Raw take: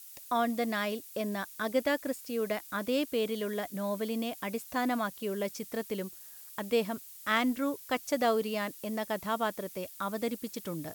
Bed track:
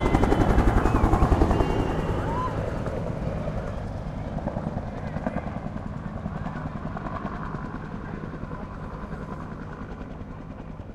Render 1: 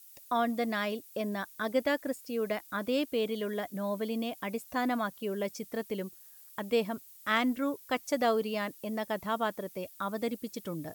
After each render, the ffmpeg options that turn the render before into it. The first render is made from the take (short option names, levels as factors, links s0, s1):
-af "afftdn=nr=7:nf=-50"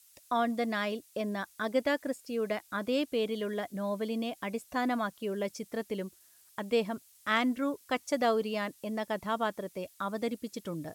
-af "lowpass=11000"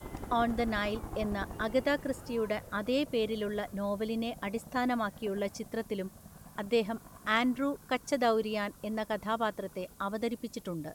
-filter_complex "[1:a]volume=0.0891[s0];[0:a][s0]amix=inputs=2:normalize=0"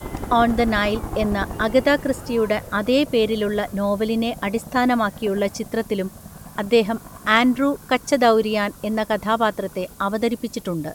-af "volume=3.98"